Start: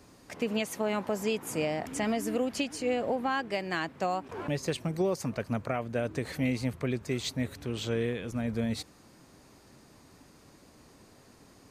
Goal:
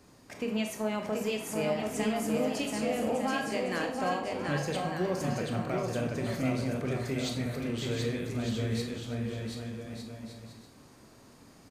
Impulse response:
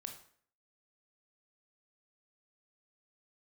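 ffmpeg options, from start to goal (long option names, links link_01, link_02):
-filter_complex "[0:a]asplit=2[link_01][link_02];[link_02]asoftclip=type=tanh:threshold=-27.5dB,volume=-9.5dB[link_03];[link_01][link_03]amix=inputs=2:normalize=0,aecho=1:1:730|1204|1513|1713|1844:0.631|0.398|0.251|0.158|0.1[link_04];[1:a]atrim=start_sample=2205[link_05];[link_04][link_05]afir=irnorm=-1:irlink=0"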